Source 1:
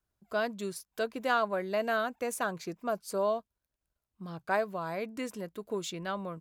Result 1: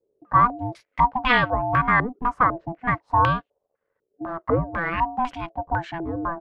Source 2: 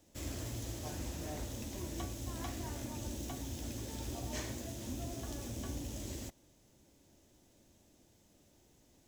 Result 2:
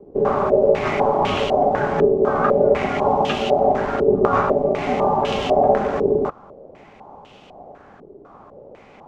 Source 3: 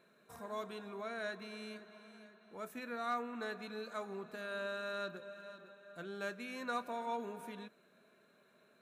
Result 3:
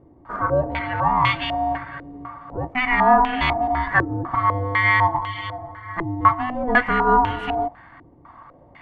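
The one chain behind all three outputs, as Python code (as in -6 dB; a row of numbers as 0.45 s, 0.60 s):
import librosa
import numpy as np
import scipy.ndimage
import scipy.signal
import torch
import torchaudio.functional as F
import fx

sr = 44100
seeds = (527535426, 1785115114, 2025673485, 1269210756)

y = x * np.sin(2.0 * np.pi * 500.0 * np.arange(len(x)) / sr)
y = fx.filter_held_lowpass(y, sr, hz=4.0, low_hz=400.0, high_hz=2900.0)
y = y * 10.0 ** (-3 / 20.0) / np.max(np.abs(y))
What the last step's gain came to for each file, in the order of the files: +9.5 dB, +22.5 dB, +21.5 dB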